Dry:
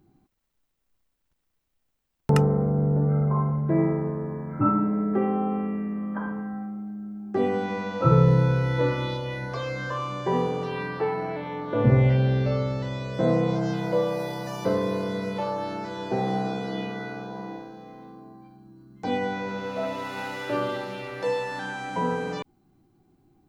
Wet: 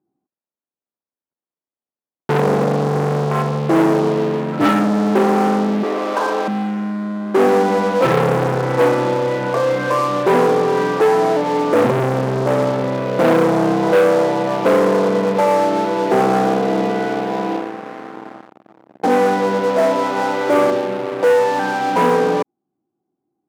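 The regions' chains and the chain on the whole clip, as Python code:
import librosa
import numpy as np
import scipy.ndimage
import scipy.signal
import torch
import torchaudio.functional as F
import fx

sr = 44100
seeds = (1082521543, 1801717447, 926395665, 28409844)

y = fx.chain(x, sr, fx.zero_step(step_db=-34.5),
    fx.steep_highpass(hz=330.0, slope=36),
    fx.env_flatten(amount_pct=50), at=(5.83, 6.48))
y = fx.chain(y, sr, fx.cvsd(bps=16000),
    fx.lowpass(hz=1600.0, slope=12),
    fx.peak_eq(hz=1200.0, db=-5.5, octaves=1.9), at=(20.7, 21.23))
y = scipy.signal.sosfilt(scipy.signal.butter(2, 1000.0, 'lowpass', fs=sr, output='sos'), y)
y = fx.leveller(y, sr, passes=5)
y = scipy.signal.sosfilt(scipy.signal.butter(2, 270.0, 'highpass', fs=sr, output='sos'), y)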